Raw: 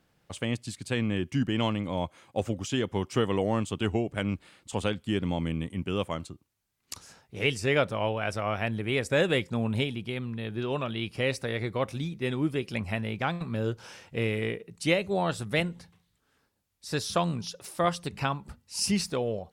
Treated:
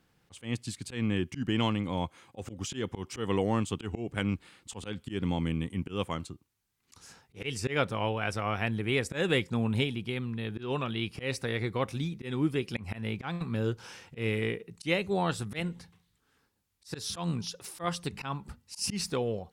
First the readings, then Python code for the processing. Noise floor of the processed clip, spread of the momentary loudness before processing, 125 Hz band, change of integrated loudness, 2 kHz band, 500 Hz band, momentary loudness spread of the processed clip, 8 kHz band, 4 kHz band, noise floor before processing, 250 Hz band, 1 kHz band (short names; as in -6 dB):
-73 dBFS, 9 LU, -1.5 dB, -2.5 dB, -3.0 dB, -4.0 dB, 10 LU, -2.0 dB, -2.5 dB, -73 dBFS, -2.0 dB, -3.0 dB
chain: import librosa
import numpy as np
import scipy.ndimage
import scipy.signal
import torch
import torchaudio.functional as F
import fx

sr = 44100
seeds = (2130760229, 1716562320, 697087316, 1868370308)

y = fx.peak_eq(x, sr, hz=610.0, db=-8.5, octaves=0.26)
y = fx.auto_swell(y, sr, attack_ms=136.0)